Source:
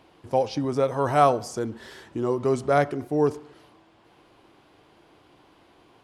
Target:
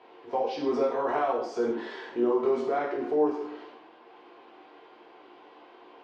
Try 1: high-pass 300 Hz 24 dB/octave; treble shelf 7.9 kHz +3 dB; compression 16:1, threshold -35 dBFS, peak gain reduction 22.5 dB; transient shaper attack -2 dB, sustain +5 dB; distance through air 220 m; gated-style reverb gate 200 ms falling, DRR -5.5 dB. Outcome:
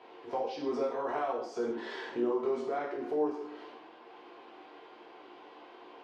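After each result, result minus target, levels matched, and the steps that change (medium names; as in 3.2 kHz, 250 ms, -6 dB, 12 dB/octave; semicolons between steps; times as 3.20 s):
compression: peak gain reduction +6 dB; 8 kHz band +3.0 dB
change: compression 16:1, threshold -28.5 dBFS, peak gain reduction 16.5 dB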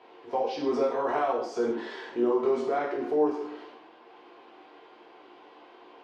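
8 kHz band +2.5 dB
change: treble shelf 7.9 kHz -6 dB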